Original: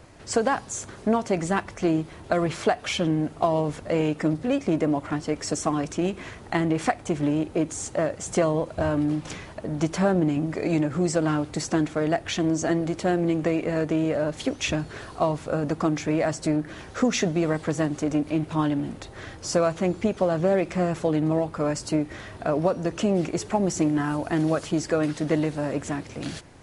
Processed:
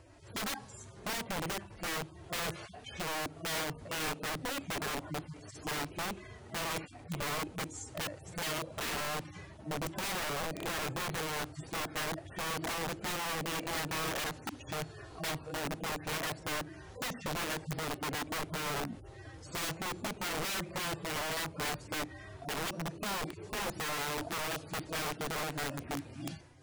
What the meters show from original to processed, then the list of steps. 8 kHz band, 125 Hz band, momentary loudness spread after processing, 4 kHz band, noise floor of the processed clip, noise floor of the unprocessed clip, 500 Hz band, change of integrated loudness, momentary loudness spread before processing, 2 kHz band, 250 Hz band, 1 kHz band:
−5.5 dB, −14.0 dB, 7 LU, −1.5 dB, −52 dBFS, −44 dBFS, −16.0 dB, −11.5 dB, 5 LU, −3.5 dB, −19.0 dB, −8.0 dB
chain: harmonic-percussive split with one part muted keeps harmonic
wrap-around overflow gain 25 dB
level −6 dB

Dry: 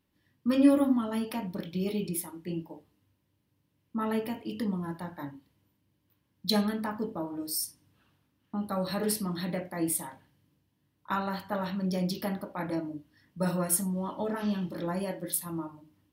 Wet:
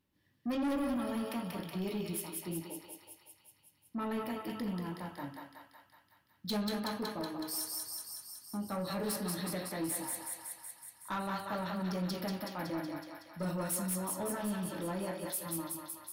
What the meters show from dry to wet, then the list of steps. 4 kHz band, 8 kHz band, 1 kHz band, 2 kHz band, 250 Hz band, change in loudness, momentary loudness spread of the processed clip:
−4.0 dB, −3.5 dB, −3.5 dB, −2.5 dB, −7.0 dB, −6.0 dB, 11 LU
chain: feedback echo with a high-pass in the loop 186 ms, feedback 69%, high-pass 610 Hz, level −3 dB
soft clipping −26.5 dBFS, distortion −9 dB
level −3.5 dB

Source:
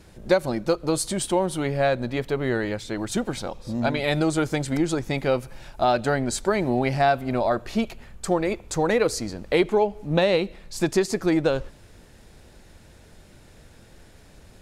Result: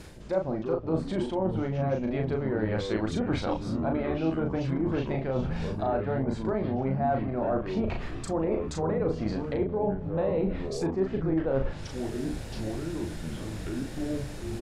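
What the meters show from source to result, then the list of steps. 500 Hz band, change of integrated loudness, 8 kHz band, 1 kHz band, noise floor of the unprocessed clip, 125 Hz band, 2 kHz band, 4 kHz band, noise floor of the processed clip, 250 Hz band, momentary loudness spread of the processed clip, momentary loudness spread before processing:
−5.5 dB, −5.5 dB, −15.0 dB, −7.5 dB, −51 dBFS, −0.5 dB, −11.0 dB, −11.0 dB, −38 dBFS, −3.0 dB, 7 LU, 7 LU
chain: treble cut that deepens with the level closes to 1,000 Hz, closed at −20 dBFS
reversed playback
downward compressor 10 to 1, threshold −35 dBFS, peak gain reduction 21 dB
reversed playback
delay with pitch and tempo change per echo 204 ms, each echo −6 semitones, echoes 3, each echo −6 dB
double-tracking delay 37 ms −4 dB
level +8 dB

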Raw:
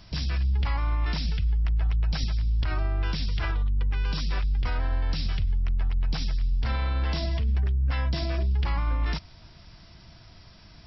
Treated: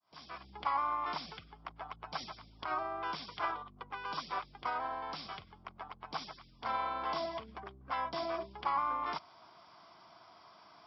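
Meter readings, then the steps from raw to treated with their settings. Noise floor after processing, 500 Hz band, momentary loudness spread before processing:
−60 dBFS, −1.5 dB, 3 LU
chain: fade in at the beginning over 0.56 s
loudspeaker in its box 490–4,400 Hz, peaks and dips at 510 Hz −4 dB, 760 Hz +4 dB, 1,100 Hz +9 dB, 1,800 Hz −10 dB, 2,700 Hz −10 dB, 4,000 Hz −10 dB

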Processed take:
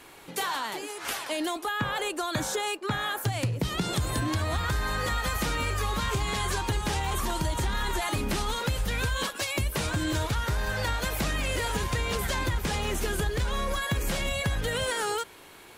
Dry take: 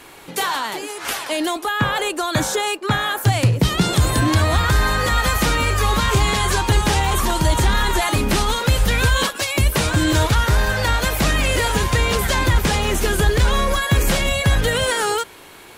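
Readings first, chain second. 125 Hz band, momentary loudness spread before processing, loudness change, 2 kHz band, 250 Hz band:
−11.5 dB, 5 LU, −10.5 dB, −10.5 dB, −10.5 dB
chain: downward compressor, threshold −17 dBFS, peak gain reduction 6.5 dB
level −7.5 dB

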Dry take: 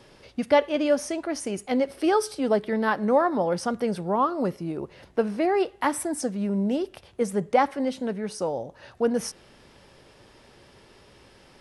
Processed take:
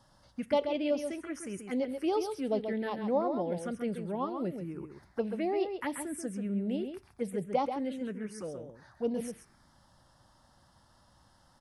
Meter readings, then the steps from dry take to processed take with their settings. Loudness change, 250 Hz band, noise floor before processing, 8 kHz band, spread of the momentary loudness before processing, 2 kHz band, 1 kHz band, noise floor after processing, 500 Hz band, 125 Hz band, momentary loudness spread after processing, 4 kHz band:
−8.0 dB, −7.0 dB, −55 dBFS, −11.0 dB, 9 LU, −12.5 dB, −10.5 dB, −65 dBFS, −8.0 dB, −7.0 dB, 10 LU, −9.0 dB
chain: phaser swept by the level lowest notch 400 Hz, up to 1,700 Hz, full sweep at −18 dBFS
slap from a distant wall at 23 metres, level −7 dB
level −7 dB

